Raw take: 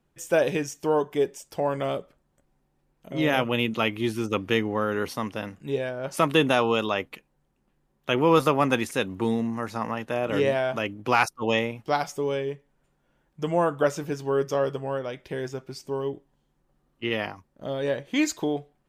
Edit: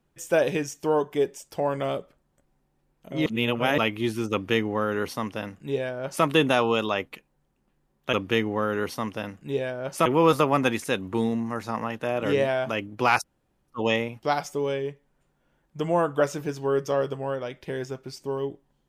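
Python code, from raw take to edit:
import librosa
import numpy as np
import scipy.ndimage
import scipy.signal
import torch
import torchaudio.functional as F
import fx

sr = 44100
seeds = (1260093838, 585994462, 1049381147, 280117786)

y = fx.edit(x, sr, fx.reverse_span(start_s=3.26, length_s=0.52),
    fx.duplicate(start_s=4.32, length_s=1.93, to_s=8.13),
    fx.insert_room_tone(at_s=11.31, length_s=0.44), tone=tone)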